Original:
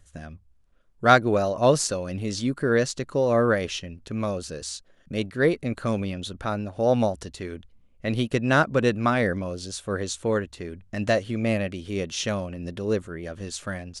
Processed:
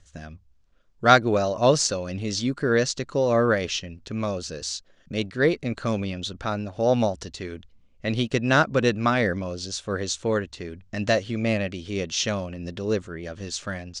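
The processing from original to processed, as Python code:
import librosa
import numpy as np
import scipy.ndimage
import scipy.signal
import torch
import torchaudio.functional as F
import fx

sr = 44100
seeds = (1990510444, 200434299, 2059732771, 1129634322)

y = scipy.signal.sosfilt(scipy.signal.butter(4, 6400.0, 'lowpass', fs=sr, output='sos'), x)
y = fx.high_shelf(y, sr, hz=4500.0, db=10.0)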